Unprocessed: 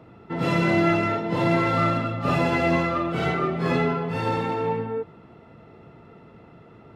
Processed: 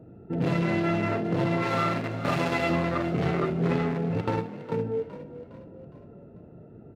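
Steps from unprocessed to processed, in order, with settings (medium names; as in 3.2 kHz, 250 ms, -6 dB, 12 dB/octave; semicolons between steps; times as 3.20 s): local Wiener filter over 41 samples; 1.62–2.70 s: tilt EQ +2 dB/octave; 4.21–4.72 s: gate with hold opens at -16 dBFS; compression, threshold -24 dBFS, peak gain reduction 7 dB; frequency-shifting echo 411 ms, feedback 45%, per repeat +38 Hz, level -13.5 dB; on a send at -10.5 dB: reverberation, pre-delay 17 ms; on the sum: trim +2 dB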